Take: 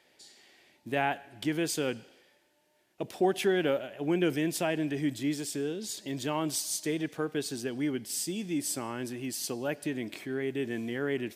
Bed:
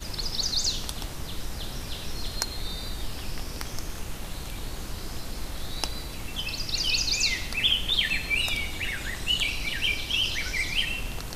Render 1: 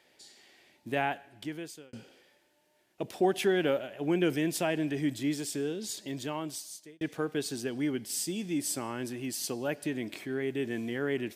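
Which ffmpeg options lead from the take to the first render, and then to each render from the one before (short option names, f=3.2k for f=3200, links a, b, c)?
-filter_complex "[0:a]asplit=3[a][b][c];[a]atrim=end=1.93,asetpts=PTS-STARTPTS,afade=t=out:st=0.89:d=1.04[d];[b]atrim=start=1.93:end=7.01,asetpts=PTS-STARTPTS,afade=t=in:d=0.004:c=hsin,afade=t=out:st=3.99:d=1.09[e];[c]atrim=start=7.01,asetpts=PTS-STARTPTS,afade=t=in:d=0.004:c=hsin[f];[d][e][f]concat=n=3:v=0:a=1"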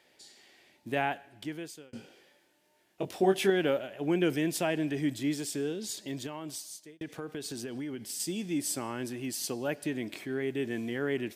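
-filter_complex "[0:a]asettb=1/sr,asplit=3[a][b][c];[a]atrim=end=1.904[d];[b]atrim=start=1.9:end=3.5,asetpts=PTS-STARTPTS,afade=t=in:d=0.004:c=qsin,afade=t=out:st=1.596:d=0.004:c=qsin,asplit=2[e][f];[f]adelay=21,volume=-4.5dB[g];[e][g]amix=inputs=2:normalize=0,atrim=end_sample=70560[h];[c]atrim=start=3.496[i];[d][h]acrossfade=d=0.004:c1=hsin:c2=qsin[j];[j][i]acrossfade=d=0.004:c1=qsin:c2=hsin,asettb=1/sr,asplit=3[k][l][m];[k]atrim=end=6.264[n];[l]atrim=start=6.26:end=8.2,asetpts=PTS-STARTPTS,afade=t=in:d=0.004:c=qsin,afade=t=out:st=1.936:d=0.004:c=qsin,acompressor=threshold=-34dB:ratio=6:attack=3.2:release=140:knee=1:detection=peak[o];[m]atrim=start=8.196[p];[n][o]acrossfade=d=0.004:c1=hsin:c2=qsin[q];[q][p]acrossfade=d=0.004:c1=qsin:c2=hsin"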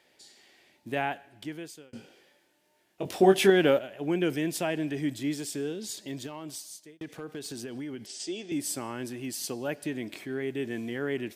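-filter_complex "[0:a]asettb=1/sr,asplit=3[a][b][c];[a]atrim=end=3.054[d];[b]atrim=start=3.05:end=3.79,asetpts=PTS-STARTPTS,afade=t=in:d=0.004:c=qsin,afade=t=out:st=0.736:d=0.004:c=qsin,acontrast=44[e];[c]atrim=start=3.786[f];[d][e]acrossfade=d=0.004:c1=hsin:c2=qsin[g];[g][f]acrossfade=d=0.004:c1=qsin:c2=hsin,asettb=1/sr,asplit=3[h][i][j];[h]atrim=end=6.264[k];[i]atrim=start=6.26:end=7.49,asetpts=PTS-STARTPTS,afade=t=in:d=0.004:c=qsin,afade=t=out:st=1.226:d=0.004:c=qsin,volume=31dB,asoftclip=hard,volume=-31dB[l];[j]atrim=start=7.486[m];[k][l]acrossfade=d=0.004:c1=hsin:c2=qsin[n];[n][m]acrossfade=d=0.004:c1=qsin:c2=hsin,asettb=1/sr,asplit=3[o][p][q];[o]atrim=end=8.064[r];[p]atrim=start=8.06:end=8.52,asetpts=PTS-STARTPTS,afade=t=in:d=0.004:c=qsin,afade=t=out:st=0.456:d=0.004:c=qsin,highpass=370,equalizer=f=380:t=q:w=4:g=8,equalizer=f=660:t=q:w=4:g=6,equalizer=f=1k:t=q:w=4:g=-4,equalizer=f=3.1k:t=q:w=4:g=3,lowpass=f=7k:w=0.5412,lowpass=f=7k:w=1.3066[s];[q]atrim=start=8.516[t];[r][s]acrossfade=d=0.004:c1=hsin:c2=qsin[u];[u][t]acrossfade=d=0.004:c1=qsin:c2=hsin"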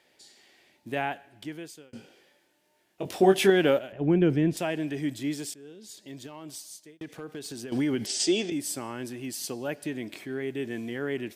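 -filter_complex "[0:a]asettb=1/sr,asplit=3[a][b][c];[a]atrim=end=3.924[d];[b]atrim=start=3.92:end=4.57,asetpts=PTS-STARTPTS,afade=t=in:d=0.004:c=qsin,afade=t=out:st=0.646:d=0.004:c=qsin,aemphasis=mode=reproduction:type=riaa[e];[c]atrim=start=4.566[f];[d][e]acrossfade=d=0.004:c1=hsin:c2=qsin[g];[g][f]acrossfade=d=0.004:c1=qsin:c2=hsin,asplit=4[h][i][j][k];[h]atrim=end=5.54,asetpts=PTS-STARTPTS,afade=t=out:st=5.536:d=0.004:c=hsin:silence=0.112202[l];[i]atrim=start=5.54:end=7.722,asetpts=PTS-STARTPTS,afade=t=in:d=1.18:silence=0.112202[m];[j]atrim=start=7.718:end=8.502,asetpts=PTS-STARTPTS,volume=11dB[n];[k]atrim=start=8.498[o];[l][m]concat=n=2:v=0:a=1[p];[p][n]acrossfade=d=0.004:c1=hsin:c2=hsin[q];[q][o]acrossfade=d=0.004:c1=hsin:c2=hsin"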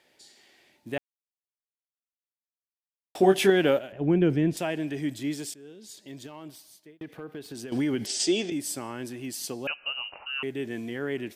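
-filter_complex "[0:a]asettb=1/sr,asplit=3[a][b][c];[a]atrim=end=6.484[d];[b]atrim=start=6.48:end=7.55,asetpts=PTS-STARTPTS,afade=t=in:d=0.004:c=qsin,afade=t=out:st=1.066:d=0.004:c=qsin,equalizer=f=7.1k:w=0.85:g=-12.5[e];[c]atrim=start=7.546[f];[d][e]acrossfade=d=0.004:c1=hsin:c2=qsin[g];[g][f]acrossfade=d=0.004:c1=qsin:c2=hsin,asettb=1/sr,asplit=3[h][i][j];[h]atrim=end=9.674[k];[i]atrim=start=9.67:end=10.43,asetpts=PTS-STARTPTS,afade=t=in:d=0.004:c=qsin,afade=t=out:st=0.756:d=0.004:c=qsin,lowpass=f=2.6k:t=q:w=0.5098,lowpass=f=2.6k:t=q:w=0.6013,lowpass=f=2.6k:t=q:w=0.9,lowpass=f=2.6k:t=q:w=2.563,afreqshift=-3100[l];[j]atrim=start=10.426[m];[k][l]acrossfade=d=0.004:c1=hsin:c2=qsin[n];[n][m]acrossfade=d=0.004:c1=qsin:c2=hsin,asplit=3[o][p][q];[o]atrim=end=0.98,asetpts=PTS-STARTPTS,afade=t=out:st=0.976:d=0.004:c=hsin[r];[p]atrim=start=0.98:end=3.15,asetpts=PTS-STARTPTS,volume=0[s];[q]atrim=start=3.15,asetpts=PTS-STARTPTS,afade=t=in:d=0.004:c=hsin[t];[r][s][t]concat=n=3:v=0:a=1"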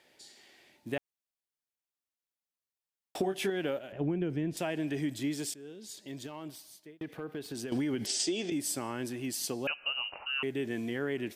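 -af "acompressor=threshold=-28dB:ratio=16"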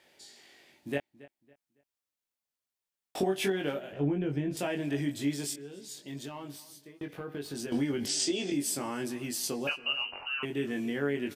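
-filter_complex "[0:a]asplit=2[a][b];[b]adelay=21,volume=-3.5dB[c];[a][c]amix=inputs=2:normalize=0,asplit=2[d][e];[e]adelay=278,lowpass=f=4k:p=1,volume=-19.5dB,asplit=2[f][g];[g]adelay=278,lowpass=f=4k:p=1,volume=0.31,asplit=2[h][i];[i]adelay=278,lowpass=f=4k:p=1,volume=0.31[j];[d][f][h][j]amix=inputs=4:normalize=0"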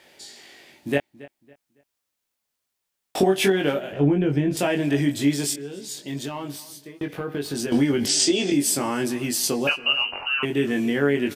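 -af "volume=10dB"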